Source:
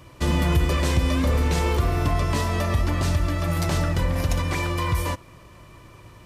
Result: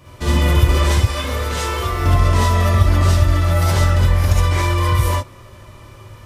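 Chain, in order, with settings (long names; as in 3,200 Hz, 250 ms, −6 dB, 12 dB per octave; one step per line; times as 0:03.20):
0:00.99–0:02.00: low-shelf EQ 420 Hz −10 dB
reverb whose tail is shaped and stops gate 90 ms rising, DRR −6 dB
level −1 dB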